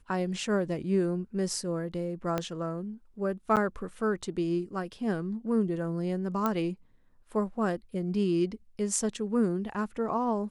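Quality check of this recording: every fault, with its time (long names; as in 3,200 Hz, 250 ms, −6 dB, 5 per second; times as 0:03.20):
0:02.38: click −15 dBFS
0:03.56–0:03.57: drop-out 8.2 ms
0:06.46: click −15 dBFS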